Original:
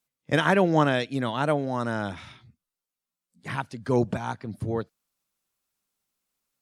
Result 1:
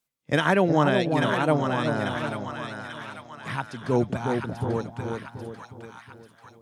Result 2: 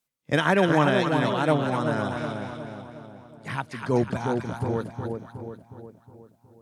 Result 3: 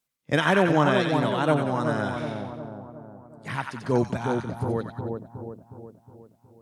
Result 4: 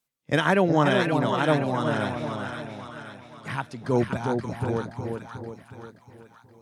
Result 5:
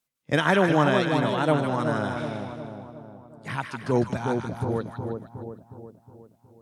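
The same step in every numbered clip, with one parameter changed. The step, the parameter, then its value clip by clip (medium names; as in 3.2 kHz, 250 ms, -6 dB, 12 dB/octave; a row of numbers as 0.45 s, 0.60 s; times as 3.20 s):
two-band feedback delay, highs: 840 ms, 247 ms, 91 ms, 525 ms, 154 ms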